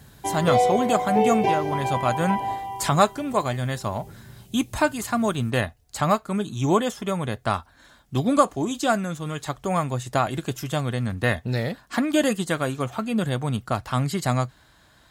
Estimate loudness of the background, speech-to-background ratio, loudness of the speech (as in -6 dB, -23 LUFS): -24.5 LUFS, -0.5 dB, -25.0 LUFS